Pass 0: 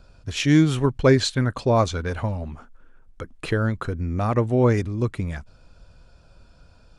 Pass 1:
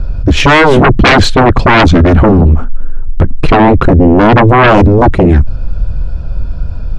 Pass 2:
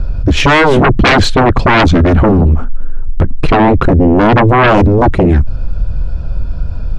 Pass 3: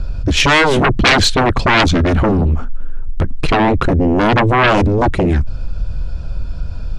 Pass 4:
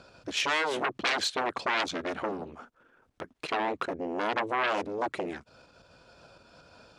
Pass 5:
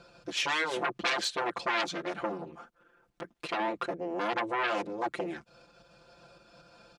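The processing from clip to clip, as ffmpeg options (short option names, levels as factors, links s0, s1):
-af "aemphasis=mode=reproduction:type=riaa,aeval=exprs='1.19*sin(PI/2*8.91*val(0)/1.19)':c=same,volume=0.708"
-af "acompressor=threshold=0.316:ratio=1.5"
-af "highshelf=f=2500:g=10.5,volume=0.531"
-af "acompressor=threshold=0.126:ratio=4,highpass=420,volume=0.398"
-af "aecho=1:1:5.8:0.98,volume=0.596"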